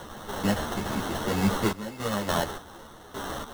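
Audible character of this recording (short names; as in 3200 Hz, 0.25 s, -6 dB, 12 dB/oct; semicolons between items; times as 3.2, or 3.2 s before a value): a quantiser's noise floor 6-bit, dither triangular; random-step tremolo, depth 85%; aliases and images of a low sample rate 2400 Hz, jitter 0%; a shimmering, thickened sound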